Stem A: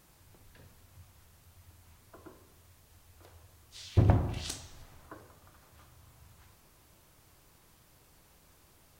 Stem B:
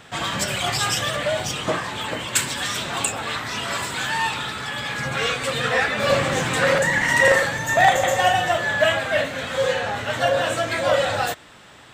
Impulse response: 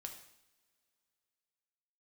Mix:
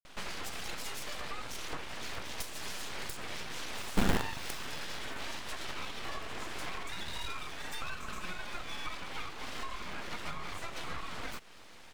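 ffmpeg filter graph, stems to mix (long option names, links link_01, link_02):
-filter_complex "[0:a]acrusher=bits=5:dc=4:mix=0:aa=0.000001,volume=-2.5dB[link_01];[1:a]highshelf=frequency=4600:gain=-6,acompressor=threshold=-30dB:ratio=12,adelay=50,volume=-5.5dB,asplit=2[link_02][link_03];[link_03]volume=-8.5dB[link_04];[2:a]atrim=start_sample=2205[link_05];[link_04][link_05]afir=irnorm=-1:irlink=0[link_06];[link_01][link_02][link_06]amix=inputs=3:normalize=0,aeval=exprs='abs(val(0))':channel_layout=same"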